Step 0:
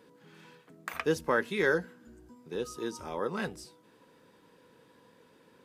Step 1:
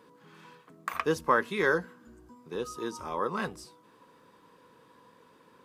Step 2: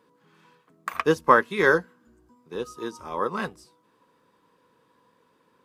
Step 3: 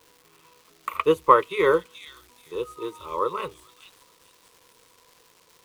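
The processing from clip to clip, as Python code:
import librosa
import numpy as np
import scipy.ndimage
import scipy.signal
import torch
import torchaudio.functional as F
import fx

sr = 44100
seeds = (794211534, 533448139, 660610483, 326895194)

y1 = fx.peak_eq(x, sr, hz=1100.0, db=10.0, octaves=0.42)
y2 = fx.upward_expand(y1, sr, threshold_db=-48.0, expansion=1.5)
y2 = F.gain(torch.from_numpy(y2), 8.5).numpy()
y3 = fx.fixed_phaser(y2, sr, hz=1100.0, stages=8)
y3 = fx.dmg_crackle(y3, sr, seeds[0], per_s=550.0, level_db=-46.0)
y3 = fx.echo_stepped(y3, sr, ms=430, hz=4300.0, octaves=0.7, feedback_pct=70, wet_db=-4.0)
y3 = F.gain(torch.from_numpy(y3), 2.5).numpy()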